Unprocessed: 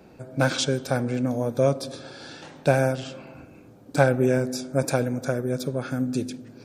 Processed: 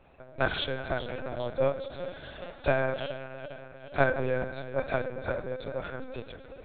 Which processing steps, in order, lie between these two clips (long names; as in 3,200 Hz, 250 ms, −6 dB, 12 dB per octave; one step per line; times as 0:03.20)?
feedback delay that plays each chunk backwards 205 ms, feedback 76%, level −13 dB
high-pass filter 520 Hz 12 dB per octave
convolution reverb RT60 2.3 s, pre-delay 13 ms, DRR 16 dB
linear-prediction vocoder at 8 kHz pitch kept
level −2 dB